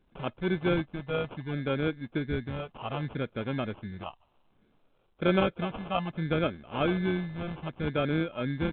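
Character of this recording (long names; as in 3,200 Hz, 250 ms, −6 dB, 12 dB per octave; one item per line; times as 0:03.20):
phaser sweep stages 4, 0.64 Hz, lowest notch 310–2,500 Hz
aliases and images of a low sample rate 1,900 Hz, jitter 0%
mu-law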